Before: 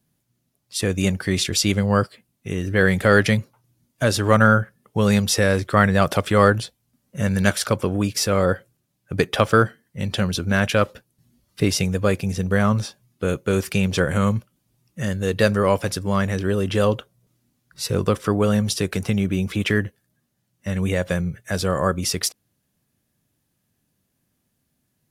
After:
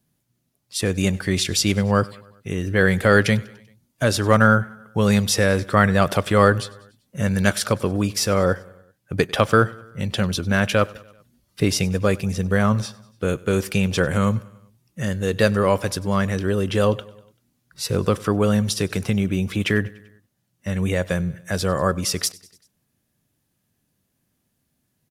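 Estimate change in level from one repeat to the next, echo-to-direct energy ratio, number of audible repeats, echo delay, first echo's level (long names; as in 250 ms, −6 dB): −4.5 dB, −21.0 dB, 3, 97 ms, −23.0 dB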